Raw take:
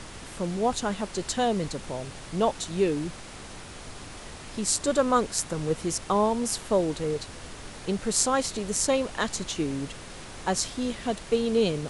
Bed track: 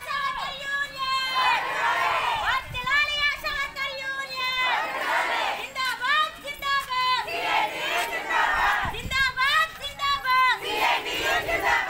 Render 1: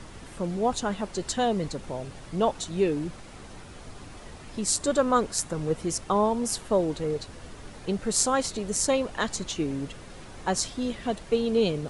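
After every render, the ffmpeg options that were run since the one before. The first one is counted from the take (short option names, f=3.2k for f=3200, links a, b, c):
-af "afftdn=nr=7:nf=-43"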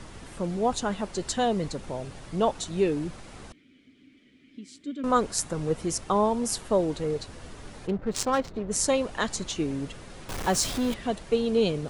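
-filter_complex "[0:a]asettb=1/sr,asplit=3[a][b][c];[a]atrim=end=3.524[d];[b]atrim=start=3.52:end=5.04,asetpts=PTS-STARTPTS,afade=t=in:d=0.004:c=qsin,afade=t=out:st=1.516:d=0.004:c=qsin,asplit=3[e][f][g];[e]bandpass=f=270:t=q:w=8,volume=0dB[h];[f]bandpass=f=2.29k:t=q:w=8,volume=-6dB[i];[g]bandpass=f=3.01k:t=q:w=8,volume=-9dB[j];[h][i][j]amix=inputs=3:normalize=0[k];[c]atrim=start=5.036[l];[d][k]acrossfade=d=0.004:c1=hsin:c2=qsin[m];[m][l]acrossfade=d=0.004:c1=qsin:c2=hsin,asplit=3[n][o][p];[n]afade=t=out:st=7.86:d=0.02[q];[o]adynamicsmooth=sensitivity=3:basefreq=940,afade=t=in:st=7.86:d=0.02,afade=t=out:st=8.7:d=0.02[r];[p]afade=t=in:st=8.7:d=0.02[s];[q][r][s]amix=inputs=3:normalize=0,asettb=1/sr,asplit=3[t][u][v];[t]atrim=end=10.294[w];[u]atrim=start=10.29:end=10.94,asetpts=PTS-STARTPTS,afade=t=in:d=0.004:c=qsin,afade=t=out:st=0.646:d=0.004:c=qsin,aeval=exprs='val(0)+0.5*0.0335*sgn(val(0))':c=same[x];[v]atrim=start=10.936[y];[w][x]acrossfade=d=0.004:c1=hsin:c2=qsin[z];[z][y]acrossfade=d=0.004:c1=qsin:c2=hsin"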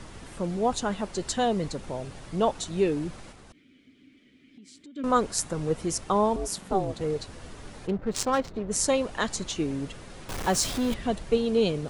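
-filter_complex "[0:a]asettb=1/sr,asplit=3[a][b][c];[a]atrim=end=3.314[d];[b]atrim=start=3.31:end=4.96,asetpts=PTS-STARTPTS,afade=t=in:d=0.004:c=qsin,afade=t=out:st=1.646:d=0.004:c=qsin,acompressor=threshold=-46dB:ratio=6:attack=3.2:release=140:knee=1:detection=peak[e];[c]atrim=start=4.956[f];[d][e]acrossfade=d=0.004:c1=hsin:c2=qsin[g];[g][f]acrossfade=d=0.004:c1=qsin:c2=hsin,asettb=1/sr,asplit=3[h][i][j];[h]atrim=end=6.364[k];[i]atrim=start=6.36:end=7.01,asetpts=PTS-STARTPTS,afade=t=in:d=0.004:c=qsin,afade=t=out:st=0.646:d=0.004:c=qsin,aeval=exprs='val(0)*sin(2*PI*190*n/s)':c=same[l];[j]atrim=start=7.006[m];[k][l]acrossfade=d=0.004:c1=hsin:c2=qsin[n];[n][m]acrossfade=d=0.004:c1=qsin:c2=hsin,asettb=1/sr,asplit=3[o][p][q];[o]atrim=end=10.914[r];[p]atrim=start=10.91:end=11.38,asetpts=PTS-STARTPTS,afade=t=in:d=0.004:c=qsin,afade=t=out:st=0.466:d=0.004:c=qsin,lowshelf=f=150:g=7[s];[q]atrim=start=11.376[t];[r][s]acrossfade=d=0.004:c1=hsin:c2=qsin[u];[u][t]acrossfade=d=0.004:c1=qsin:c2=hsin"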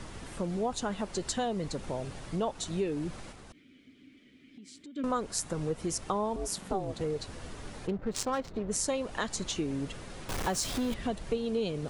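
-af "acompressor=threshold=-30dB:ratio=3"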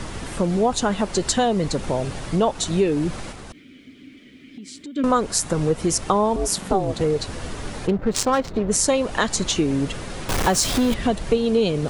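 -af "volume=12dB,alimiter=limit=-3dB:level=0:latency=1"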